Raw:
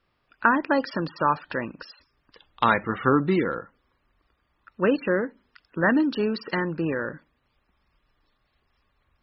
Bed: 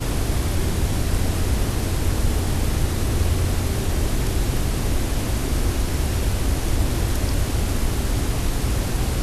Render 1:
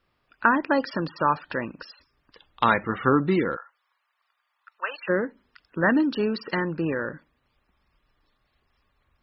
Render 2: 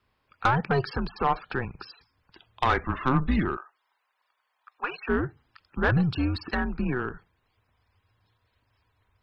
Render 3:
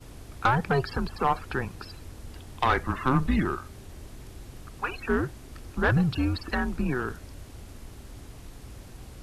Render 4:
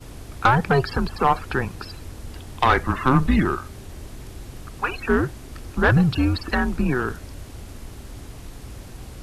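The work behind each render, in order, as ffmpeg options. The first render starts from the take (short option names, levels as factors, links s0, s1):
-filter_complex "[0:a]asplit=3[s0][s1][s2];[s0]afade=t=out:st=3.55:d=0.02[s3];[s1]highpass=f=820:w=0.5412,highpass=f=820:w=1.3066,afade=t=in:st=3.55:d=0.02,afade=t=out:st=5.08:d=0.02[s4];[s2]afade=t=in:st=5.08:d=0.02[s5];[s3][s4][s5]amix=inputs=3:normalize=0"
-af "afreqshift=-130,aeval=exprs='(tanh(5.01*val(0)+0.3)-tanh(0.3))/5.01':c=same"
-filter_complex "[1:a]volume=0.0794[s0];[0:a][s0]amix=inputs=2:normalize=0"
-af "volume=2"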